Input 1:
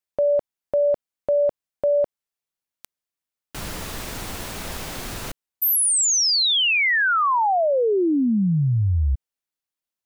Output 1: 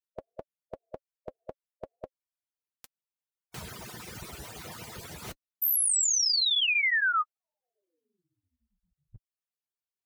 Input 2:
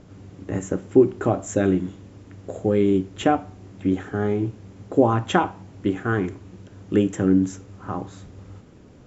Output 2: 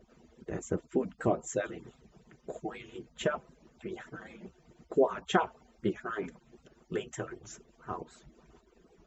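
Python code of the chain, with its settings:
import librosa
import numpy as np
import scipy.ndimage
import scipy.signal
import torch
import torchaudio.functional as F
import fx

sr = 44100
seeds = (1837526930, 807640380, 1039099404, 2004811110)

y = fx.hpss_only(x, sr, part='percussive')
y = fx.notch_comb(y, sr, f0_hz=280.0)
y = fx.record_warp(y, sr, rpm=78.0, depth_cents=100.0)
y = y * 10.0 ** (-5.0 / 20.0)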